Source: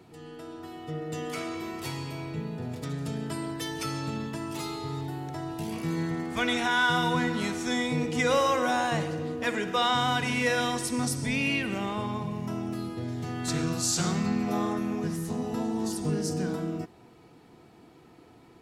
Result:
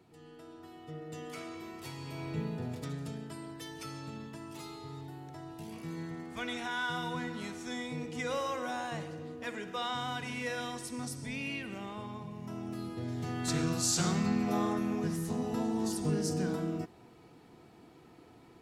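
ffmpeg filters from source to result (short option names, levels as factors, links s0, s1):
-af "volume=2.24,afade=t=in:st=1.97:d=0.44:silence=0.398107,afade=t=out:st=2.41:d=0.88:silence=0.334965,afade=t=in:st=12.35:d=0.92:silence=0.398107"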